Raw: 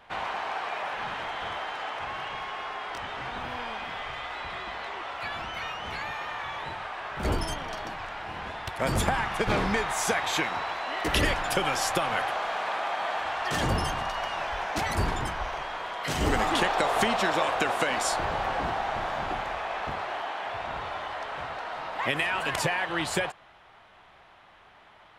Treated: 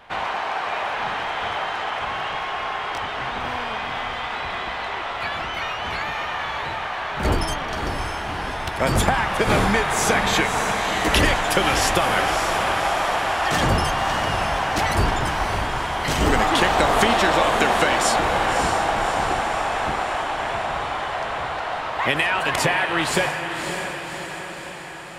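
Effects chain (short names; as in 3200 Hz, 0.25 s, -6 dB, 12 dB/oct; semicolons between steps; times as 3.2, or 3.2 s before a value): diffused feedback echo 0.594 s, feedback 61%, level -6.5 dB; gain +6.5 dB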